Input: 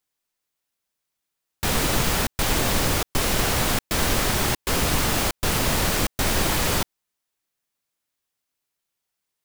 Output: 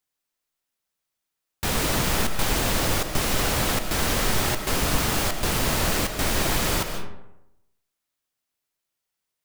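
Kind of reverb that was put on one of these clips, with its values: digital reverb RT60 0.87 s, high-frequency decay 0.55×, pre-delay 0.105 s, DRR 6.5 dB; gain -2 dB

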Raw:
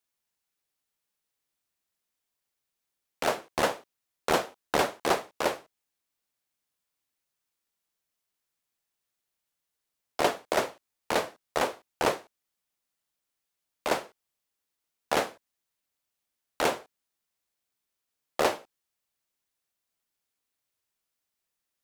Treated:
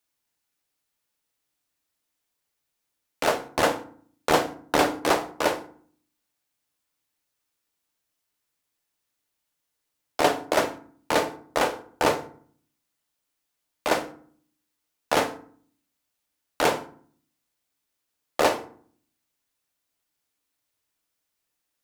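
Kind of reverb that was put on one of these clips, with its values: FDN reverb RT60 0.52 s, low-frequency decay 1.5×, high-frequency decay 0.6×, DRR 7.5 dB; gain +3.5 dB

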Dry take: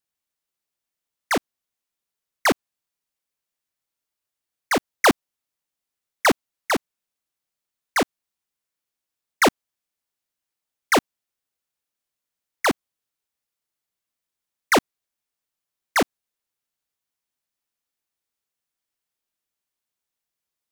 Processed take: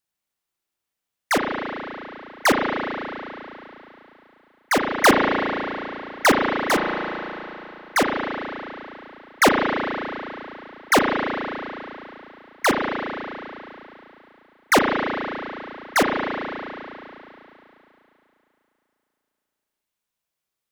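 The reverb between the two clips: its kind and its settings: spring tank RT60 3.2 s, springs 35 ms, chirp 55 ms, DRR 0.5 dB; gain +1 dB

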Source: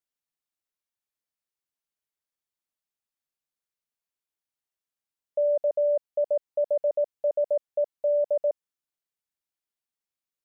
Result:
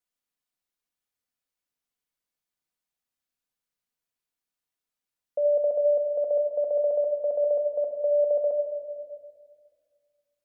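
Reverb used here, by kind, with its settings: shoebox room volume 2700 m³, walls mixed, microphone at 1.9 m

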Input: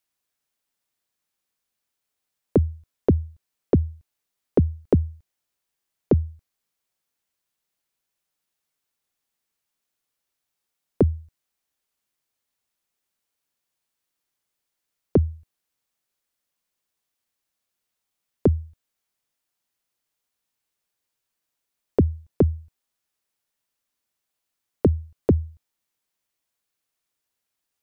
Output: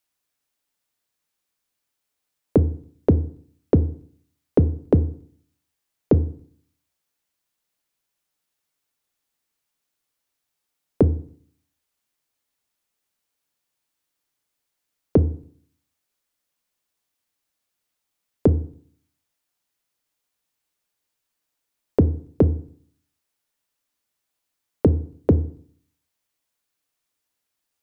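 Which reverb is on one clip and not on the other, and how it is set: FDN reverb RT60 0.55 s, low-frequency decay 1.2×, high-frequency decay 0.75×, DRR 12.5 dB; gain +1.5 dB

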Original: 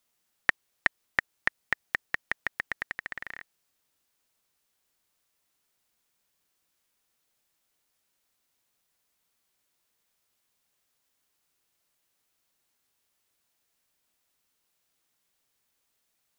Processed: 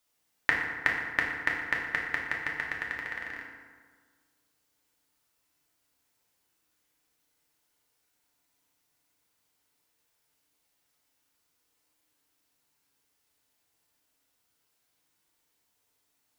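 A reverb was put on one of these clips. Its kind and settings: FDN reverb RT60 1.6 s, low-frequency decay 1.05×, high-frequency decay 0.55×, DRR -2.5 dB; gain -2.5 dB

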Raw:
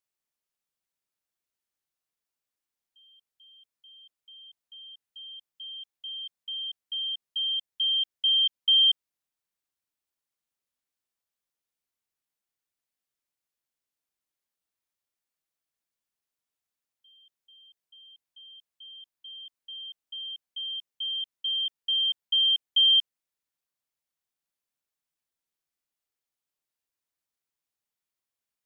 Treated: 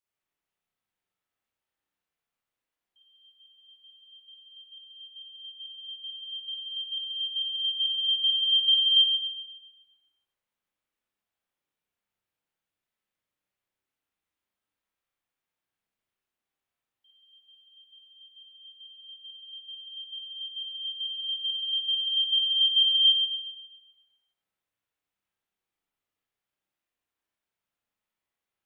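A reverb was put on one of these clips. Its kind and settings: spring tank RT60 1.2 s, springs 31/41 ms, chirp 55 ms, DRR -9 dB; gain -4.5 dB

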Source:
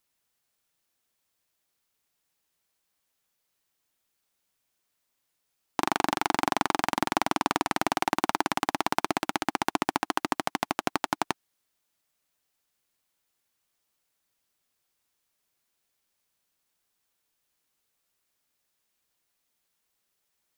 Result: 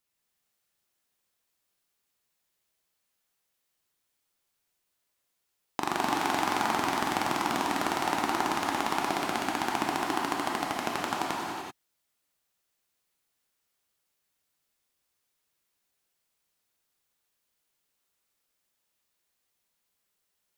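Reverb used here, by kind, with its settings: non-linear reverb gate 0.41 s flat, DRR -2.5 dB; gain -5 dB

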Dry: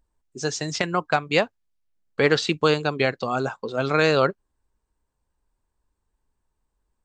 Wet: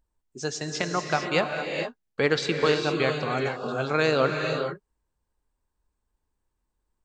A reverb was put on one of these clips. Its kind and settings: non-linear reverb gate 0.48 s rising, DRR 3.5 dB; gain -4 dB

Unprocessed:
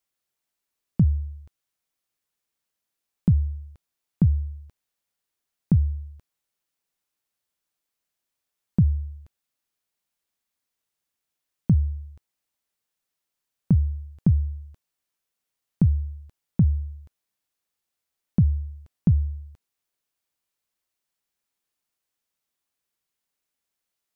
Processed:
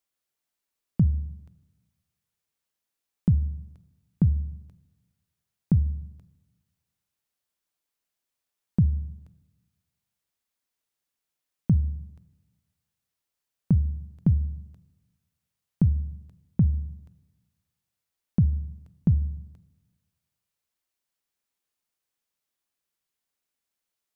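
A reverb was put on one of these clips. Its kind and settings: Schroeder reverb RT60 1.3 s, combs from 33 ms, DRR 17.5 dB; gain -2 dB

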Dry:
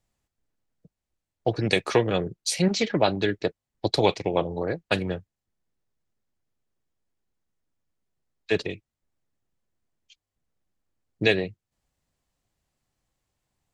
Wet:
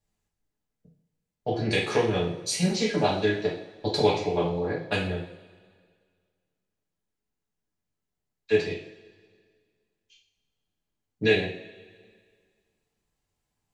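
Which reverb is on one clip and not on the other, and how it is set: two-slope reverb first 0.5 s, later 1.9 s, from -18 dB, DRR -6.5 dB; gain -9 dB

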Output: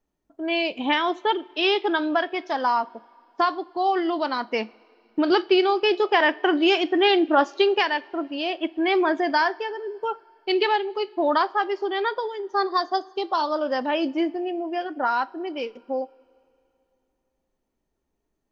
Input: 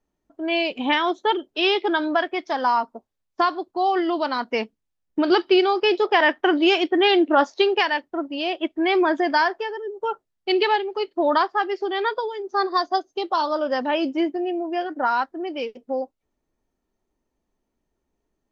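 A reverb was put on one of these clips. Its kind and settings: two-slope reverb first 0.37 s, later 2.8 s, from -18 dB, DRR 16.5 dB; gain -1.5 dB

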